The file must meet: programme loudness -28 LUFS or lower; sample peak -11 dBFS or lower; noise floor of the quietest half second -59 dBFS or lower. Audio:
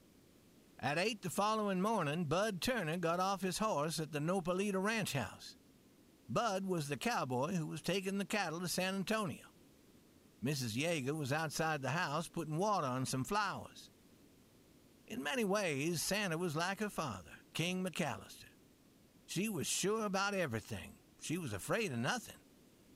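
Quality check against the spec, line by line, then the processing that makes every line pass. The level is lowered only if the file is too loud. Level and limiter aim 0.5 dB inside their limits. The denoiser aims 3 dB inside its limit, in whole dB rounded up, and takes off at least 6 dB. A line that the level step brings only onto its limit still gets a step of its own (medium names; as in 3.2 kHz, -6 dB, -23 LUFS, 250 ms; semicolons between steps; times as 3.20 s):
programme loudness -37.5 LUFS: pass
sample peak -23.0 dBFS: pass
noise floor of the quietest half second -66 dBFS: pass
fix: none needed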